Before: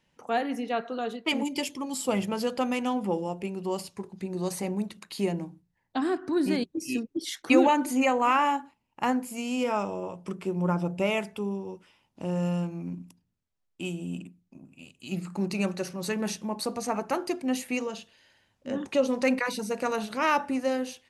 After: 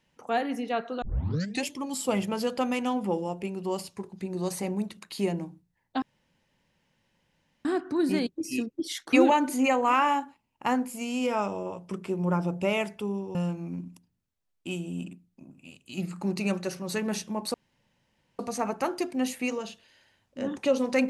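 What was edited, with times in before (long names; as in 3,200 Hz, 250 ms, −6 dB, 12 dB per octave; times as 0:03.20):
0:01.02: tape start 0.64 s
0:06.02: splice in room tone 1.63 s
0:11.72–0:12.49: remove
0:16.68: splice in room tone 0.85 s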